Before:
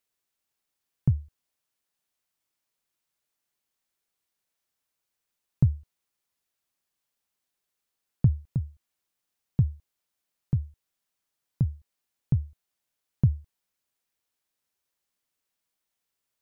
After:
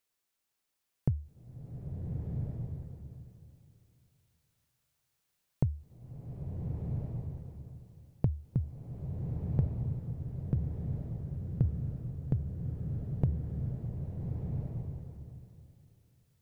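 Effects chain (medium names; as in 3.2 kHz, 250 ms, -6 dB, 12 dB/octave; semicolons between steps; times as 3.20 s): compression, threshold -25 dBFS, peak gain reduction 10 dB; swelling reverb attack 1410 ms, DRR -1 dB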